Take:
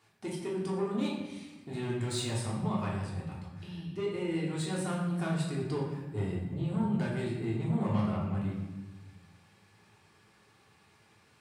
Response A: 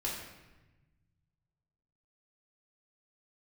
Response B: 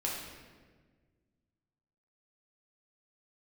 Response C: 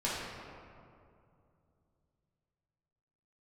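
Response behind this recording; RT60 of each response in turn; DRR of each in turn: A; 1.1 s, 1.5 s, 2.5 s; -5.5 dB, -4.0 dB, -8.5 dB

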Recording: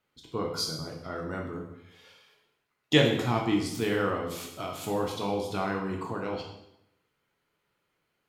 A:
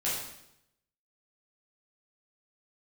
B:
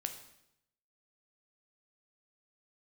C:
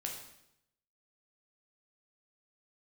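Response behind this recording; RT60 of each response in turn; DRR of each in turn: C; 0.80 s, 0.80 s, 0.80 s; -8.5 dB, 5.5 dB, 0.0 dB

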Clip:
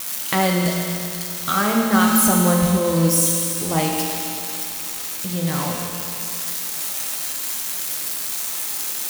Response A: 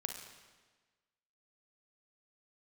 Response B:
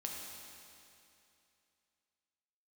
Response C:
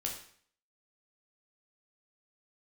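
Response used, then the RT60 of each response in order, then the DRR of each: B; 1.4 s, 2.7 s, 0.55 s; 4.0 dB, -1.5 dB, -0.5 dB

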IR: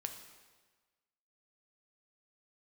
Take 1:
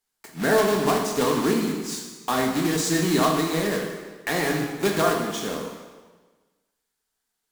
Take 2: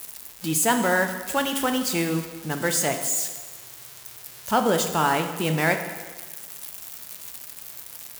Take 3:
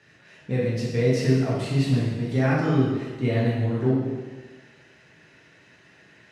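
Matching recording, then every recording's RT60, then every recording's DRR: 2; 1.4 s, 1.4 s, 1.4 s; 0.0 dB, 5.0 dB, -7.0 dB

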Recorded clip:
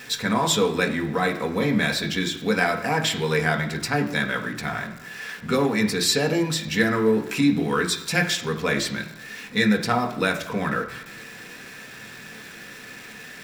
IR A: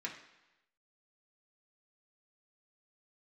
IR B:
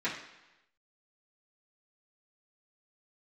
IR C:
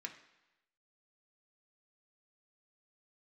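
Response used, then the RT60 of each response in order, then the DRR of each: C; 1.0 s, 1.0 s, 1.0 s; -3.0 dB, -11.0 dB, 2.0 dB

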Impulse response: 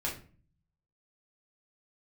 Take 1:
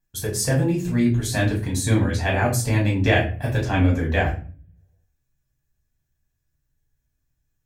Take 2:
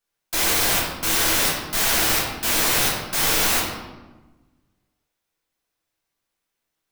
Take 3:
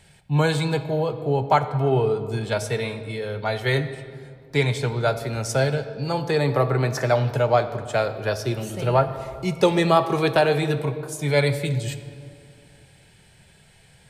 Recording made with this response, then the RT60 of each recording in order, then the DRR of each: 1; 0.40 s, 1.2 s, 2.3 s; -4.0 dB, -7.5 dB, 8.5 dB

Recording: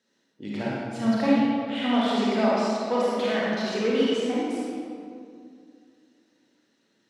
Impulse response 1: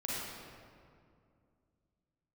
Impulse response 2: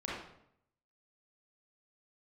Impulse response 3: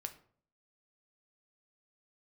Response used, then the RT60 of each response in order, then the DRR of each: 1; 2.3 s, 0.70 s, 0.55 s; -6.5 dB, -6.5 dB, 6.5 dB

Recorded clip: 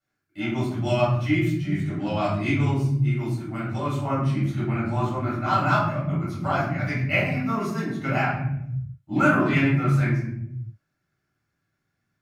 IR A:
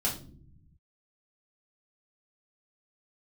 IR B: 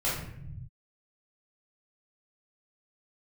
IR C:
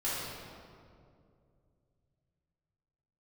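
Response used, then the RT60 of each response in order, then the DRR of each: B; no single decay rate, 0.75 s, 2.4 s; -5.0 dB, -9.0 dB, -10.5 dB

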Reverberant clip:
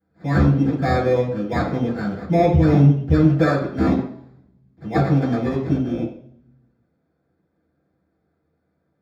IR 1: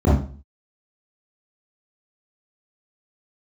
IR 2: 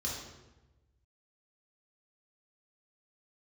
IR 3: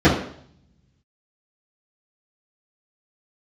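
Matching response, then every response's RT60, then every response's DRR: 3; 0.40 s, 1.1 s, 0.60 s; -9.5 dB, -4.5 dB, -12.5 dB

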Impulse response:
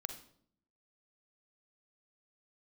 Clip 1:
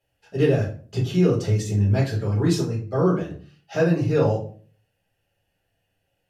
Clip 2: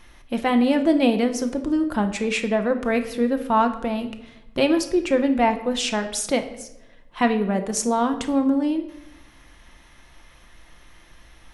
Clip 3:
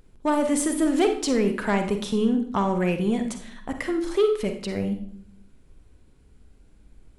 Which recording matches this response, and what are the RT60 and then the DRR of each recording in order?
3; 0.40 s, 0.95 s, 0.60 s; -5.5 dB, 6.5 dB, 6.0 dB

